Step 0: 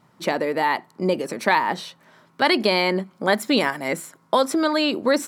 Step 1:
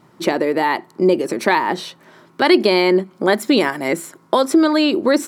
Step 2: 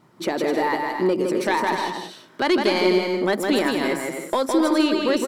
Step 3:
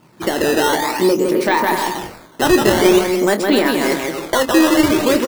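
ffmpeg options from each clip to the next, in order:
ffmpeg -i in.wav -filter_complex "[0:a]equalizer=frequency=350:width=3.1:gain=9.5,asplit=2[link_01][link_02];[link_02]acompressor=threshold=-25dB:ratio=6,volume=-1dB[link_03];[link_01][link_03]amix=inputs=2:normalize=0" out.wav
ffmpeg -i in.wav -filter_complex "[0:a]asoftclip=type=tanh:threshold=-7dB,asplit=2[link_01][link_02];[link_02]aecho=0:1:160|256|313.6|348.2|368.9:0.631|0.398|0.251|0.158|0.1[link_03];[link_01][link_03]amix=inputs=2:normalize=0,volume=-5dB" out.wav
ffmpeg -i in.wav -filter_complex "[0:a]acrusher=samples=11:mix=1:aa=0.000001:lfo=1:lforange=17.6:lforate=0.49,asplit=2[link_01][link_02];[link_02]adelay=25,volume=-10dB[link_03];[link_01][link_03]amix=inputs=2:normalize=0,volume=5.5dB" out.wav

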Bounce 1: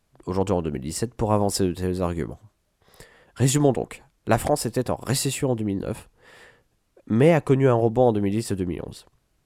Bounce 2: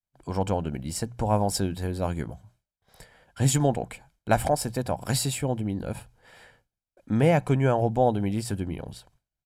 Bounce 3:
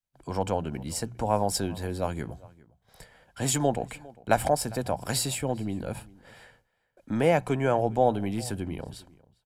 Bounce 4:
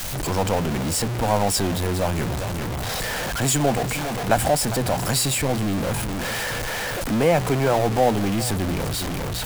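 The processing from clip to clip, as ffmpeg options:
ffmpeg -i in.wav -af "bandreject=frequency=60:width_type=h:width=6,bandreject=frequency=120:width_type=h:width=6,bandreject=frequency=180:width_type=h:width=6,agate=range=-33dB:threshold=-54dB:ratio=3:detection=peak,aecho=1:1:1.3:0.47,volume=-3dB" out.wav
ffmpeg -i in.wav -filter_complex "[0:a]acrossover=split=230[link_01][link_02];[link_01]asoftclip=type=tanh:threshold=-32.5dB[link_03];[link_03][link_02]amix=inputs=2:normalize=0,asplit=2[link_04][link_05];[link_05]adelay=402.3,volume=-22dB,highshelf=frequency=4000:gain=-9.05[link_06];[link_04][link_06]amix=inputs=2:normalize=0" out.wav
ffmpeg -i in.wav -af "aeval=exprs='val(0)+0.5*0.075*sgn(val(0))':channel_layout=same,volume=1.5dB" out.wav

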